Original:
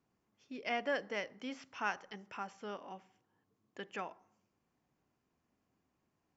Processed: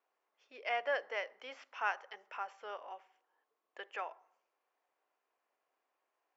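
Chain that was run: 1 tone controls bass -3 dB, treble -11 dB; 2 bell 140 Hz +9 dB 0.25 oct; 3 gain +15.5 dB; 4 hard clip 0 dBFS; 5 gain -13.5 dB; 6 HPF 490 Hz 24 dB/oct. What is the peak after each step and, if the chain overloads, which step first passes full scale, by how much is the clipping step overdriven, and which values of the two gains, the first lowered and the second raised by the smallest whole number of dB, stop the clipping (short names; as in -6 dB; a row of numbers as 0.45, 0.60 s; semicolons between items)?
-21.0, -21.0, -5.5, -5.5, -19.0, -21.5 dBFS; no overload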